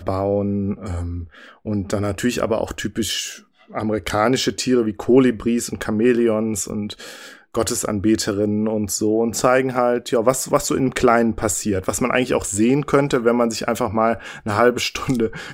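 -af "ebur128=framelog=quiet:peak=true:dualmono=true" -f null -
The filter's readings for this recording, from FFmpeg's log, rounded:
Integrated loudness:
  I:         -16.8 LUFS
  Threshold: -27.1 LUFS
Loudness range:
  LRA:         4.7 LU
  Threshold: -36.9 LUFS
  LRA low:   -20.3 LUFS
  LRA high:  -15.6 LUFS
True peak:
  Peak:       -2.0 dBFS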